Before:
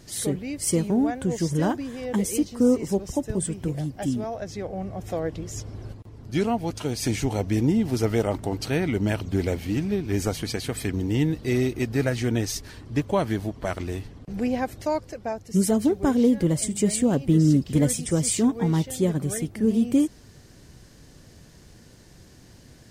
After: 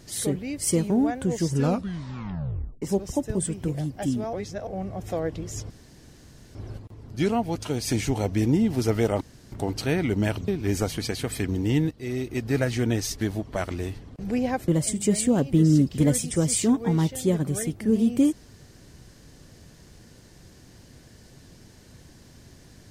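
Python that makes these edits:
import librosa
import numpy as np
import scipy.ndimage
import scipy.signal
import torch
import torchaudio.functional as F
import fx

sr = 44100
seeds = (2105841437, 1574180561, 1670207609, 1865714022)

y = fx.edit(x, sr, fx.tape_stop(start_s=1.45, length_s=1.37),
    fx.reverse_span(start_s=4.33, length_s=0.34),
    fx.insert_room_tone(at_s=5.7, length_s=0.85),
    fx.insert_room_tone(at_s=8.36, length_s=0.31),
    fx.cut(start_s=9.32, length_s=0.61),
    fx.fade_in_from(start_s=11.36, length_s=0.68, floor_db=-14.5),
    fx.cut(start_s=12.66, length_s=0.64),
    fx.cut(start_s=14.77, length_s=1.66), tone=tone)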